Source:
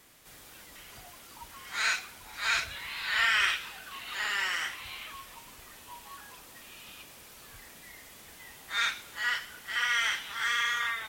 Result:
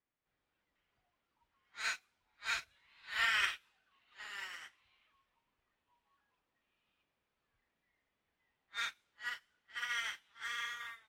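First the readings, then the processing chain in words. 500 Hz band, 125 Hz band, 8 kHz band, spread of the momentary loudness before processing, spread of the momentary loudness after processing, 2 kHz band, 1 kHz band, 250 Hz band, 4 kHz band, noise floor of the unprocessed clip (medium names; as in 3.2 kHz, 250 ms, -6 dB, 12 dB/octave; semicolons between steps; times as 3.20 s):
-11.5 dB, under -15 dB, -11.5 dB, 22 LU, 16 LU, -10.0 dB, -10.5 dB, under -15 dB, -10.5 dB, -52 dBFS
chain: level-controlled noise filter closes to 2.4 kHz, open at -27 dBFS; upward expansion 2.5:1, over -41 dBFS; trim -5 dB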